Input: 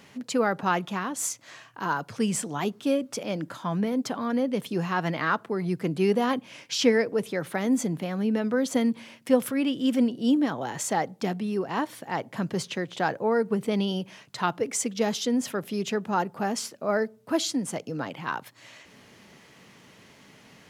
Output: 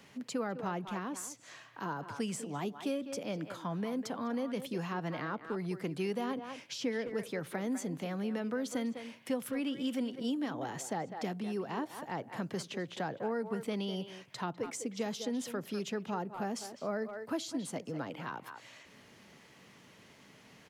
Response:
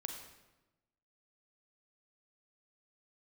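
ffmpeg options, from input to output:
-filter_complex "[0:a]asplit=2[a][b];[b]adelay=200,highpass=300,lowpass=3.4k,asoftclip=type=hard:threshold=-16.5dB,volume=-11dB[c];[a][c]amix=inputs=2:normalize=0,acrossover=split=290|720[d][e][f];[d]acompressor=threshold=-33dB:ratio=4[g];[e]acompressor=threshold=-33dB:ratio=4[h];[f]acompressor=threshold=-36dB:ratio=4[i];[g][h][i]amix=inputs=3:normalize=0,volume=-5.5dB"

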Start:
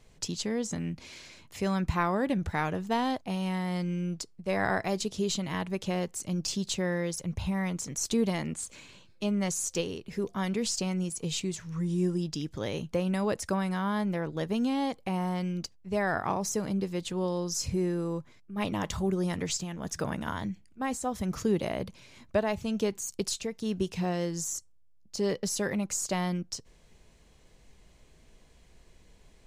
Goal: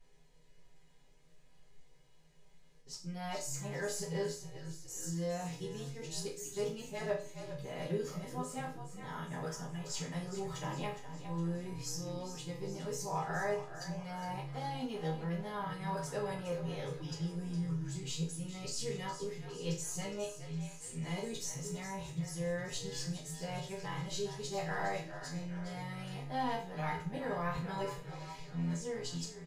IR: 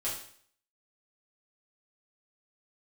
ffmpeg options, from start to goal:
-filter_complex "[0:a]areverse,asplit=8[a][b][c][d][e][f][g][h];[b]adelay=412,afreqshift=-41,volume=-11dB[i];[c]adelay=824,afreqshift=-82,volume=-15.6dB[j];[d]adelay=1236,afreqshift=-123,volume=-20.2dB[k];[e]adelay=1648,afreqshift=-164,volume=-24.7dB[l];[f]adelay=2060,afreqshift=-205,volume=-29.3dB[m];[g]adelay=2472,afreqshift=-246,volume=-33.9dB[n];[h]adelay=2884,afreqshift=-287,volume=-38.5dB[o];[a][i][j][k][l][m][n][o]amix=inputs=8:normalize=0[p];[1:a]atrim=start_sample=2205,asetrate=66150,aresample=44100[q];[p][q]afir=irnorm=-1:irlink=0,volume=-8.5dB"

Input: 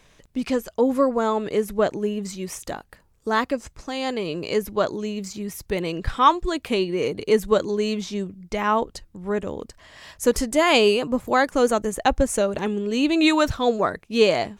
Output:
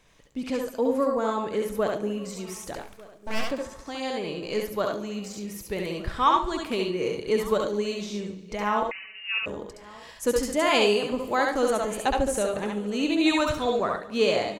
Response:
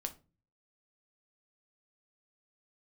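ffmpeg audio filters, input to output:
-filter_complex "[0:a]asplit=2[a][b];[b]aecho=0:1:142|284|426|568:0.126|0.0642|0.0327|0.0167[c];[a][c]amix=inputs=2:normalize=0,asettb=1/sr,asplit=3[d][e][f];[d]atrim=end=2.754[g];[e]atrim=start=2.75:end=3.51,asetpts=PTS-STARTPTS,afade=t=in:d=0.004:c=qsin,afade=t=out:st=0.756:d=0.004:c=qsin,aeval=exprs='abs(val(0))':c=same[h];[f]atrim=start=3.506[i];[g][h]acrossfade=d=0.004:c1=hsin:c2=qsin[j];[j][i]acrossfade=d=0.004:c1=qsin:c2=hsin,aecho=1:1:1198:0.0794,asplit=2[k][l];[1:a]atrim=start_sample=2205,lowshelf=f=200:g=-11.5,adelay=68[m];[l][m]afir=irnorm=-1:irlink=0,volume=0dB[n];[k][n]amix=inputs=2:normalize=0,asettb=1/sr,asplit=3[o][p][q];[o]atrim=end=8.914[r];[p]atrim=start=8.91:end=9.46,asetpts=PTS-STARTPTS,afade=t=in:d=0.004:c=qsin,afade=t=out:st=0.546:d=0.004:c=qsin,lowpass=f=2.6k:t=q:w=0.5098,lowpass=f=2.6k:t=q:w=0.6013,lowpass=f=2.6k:t=q:w=0.9,lowpass=f=2.6k:t=q:w=2.563,afreqshift=-3000[s];[q]atrim=start=9.456[t];[r][s]acrossfade=d=0.004:c1=hsin:c2=qsin[u];[u][t]acrossfade=d=0.004:c1=qsin:c2=hsin,volume=-6dB"

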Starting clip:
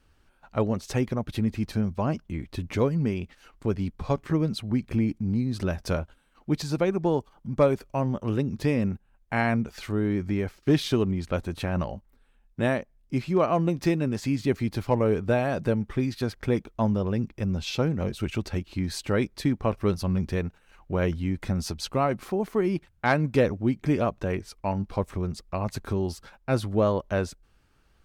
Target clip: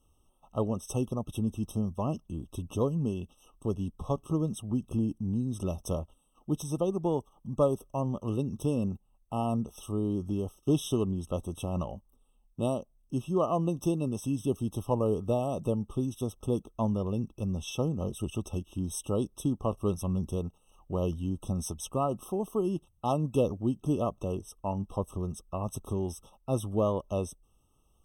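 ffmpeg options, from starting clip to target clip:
-af "highshelf=f=6k:t=q:w=1.5:g=8.5,afftfilt=real='re*eq(mod(floor(b*sr/1024/1300),2),0)':imag='im*eq(mod(floor(b*sr/1024/1300),2),0)':win_size=1024:overlap=0.75,volume=-4.5dB"

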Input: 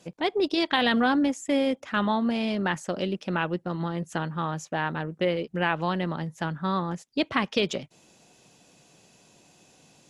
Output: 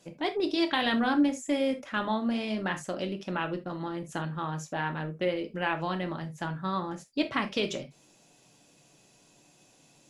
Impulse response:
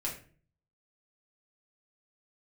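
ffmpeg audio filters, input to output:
-filter_complex "[0:a]asplit=2[a][b];[1:a]atrim=start_sample=2205,atrim=end_sample=3969,highshelf=f=7.9k:g=9[c];[b][c]afir=irnorm=-1:irlink=0,volume=-3dB[d];[a][d]amix=inputs=2:normalize=0,volume=-8.5dB"

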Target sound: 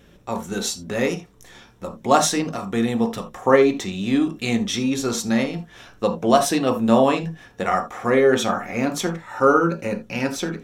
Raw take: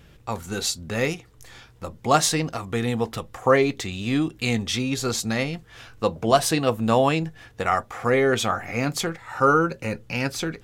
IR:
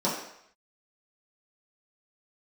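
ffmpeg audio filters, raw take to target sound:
-filter_complex "[0:a]asplit=2[a][b];[1:a]atrim=start_sample=2205,atrim=end_sample=3969[c];[b][c]afir=irnorm=-1:irlink=0,volume=-12.5dB[d];[a][d]amix=inputs=2:normalize=0,volume=-2dB"

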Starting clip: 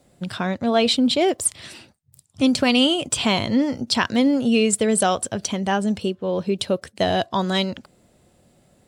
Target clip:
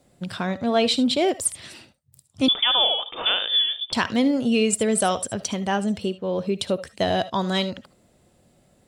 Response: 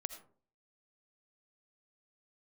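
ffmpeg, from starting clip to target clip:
-filter_complex "[1:a]atrim=start_sample=2205,atrim=end_sample=3528[a];[0:a][a]afir=irnorm=-1:irlink=0,asettb=1/sr,asplit=3[b][c][d];[b]atrim=end=2.484[e];[c]atrim=start=2.48:end=3.93,asetpts=PTS-STARTPTS,afade=t=in:d=0.004:c=qsin,afade=t=out:st=1.446:d=0.004:c=qsin,lowpass=f=3.1k:t=q:w=0.5098,lowpass=f=3.1k:t=q:w=0.6013,lowpass=f=3.1k:t=q:w=0.9,lowpass=f=3.1k:t=q:w=2.563,afreqshift=-3700[f];[d]atrim=start=3.926[g];[e][f]acrossfade=d=0.004:c1=hsin:c2=qsin[h];[h][g]acrossfade=d=0.004:c1=qsin:c2=hsin"

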